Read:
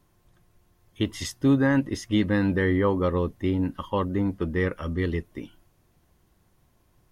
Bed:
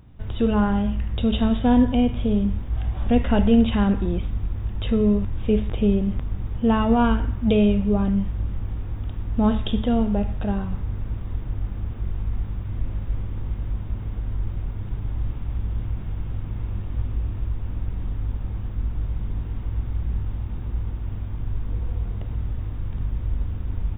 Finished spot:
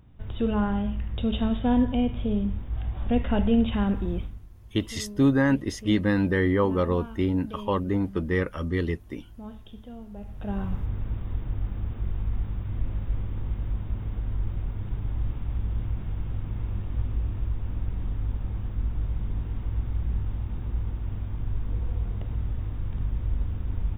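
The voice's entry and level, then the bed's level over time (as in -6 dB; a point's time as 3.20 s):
3.75 s, 0.0 dB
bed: 4.21 s -5 dB
4.46 s -21.5 dB
10.07 s -21.5 dB
10.64 s -2 dB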